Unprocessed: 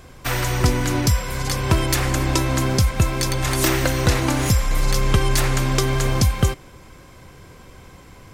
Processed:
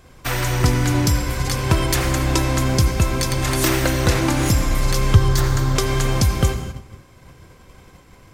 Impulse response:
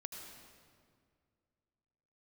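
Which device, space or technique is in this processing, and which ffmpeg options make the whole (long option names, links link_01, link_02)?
keyed gated reverb: -filter_complex "[0:a]asettb=1/sr,asplit=3[link_01][link_02][link_03];[link_01]atrim=end=5.144[link_04];[link_02]atrim=start=5.14:end=5.76,asetpts=PTS-STARTPTS,afade=type=in:duration=0.004:curve=qsin,afade=type=out:start_time=0.616:duration=0.004:curve=qsin,equalizer=frequency=100:width_type=o:width=0.67:gain=11,equalizer=frequency=250:width_type=o:width=0.67:gain=-5,equalizer=frequency=630:width_type=o:width=0.67:gain=-4,equalizer=frequency=2500:width_type=o:width=0.67:gain=-10,equalizer=frequency=10000:width_type=o:width=0.67:gain=-8[link_05];[link_03]atrim=start=5.756[link_06];[link_04][link_05]acrossfade=duration=0.004:curve1=hsin:curve2=qsin[link_07];[link_07][link_06]acrossfade=duration=0.004:curve1=qsin:curve2=hsin,asplit=3[link_08][link_09][link_10];[1:a]atrim=start_sample=2205[link_11];[link_09][link_11]afir=irnorm=-1:irlink=0[link_12];[link_10]apad=whole_len=367665[link_13];[link_12][link_13]sidechaingate=range=-33dB:threshold=-41dB:ratio=16:detection=peak,volume=4dB[link_14];[link_08][link_14]amix=inputs=2:normalize=0,volume=-5.5dB"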